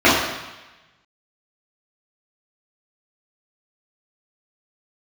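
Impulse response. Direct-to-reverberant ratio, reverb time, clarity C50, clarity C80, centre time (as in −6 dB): −10.5 dB, 1.1 s, 1.0 dB, 4.0 dB, 66 ms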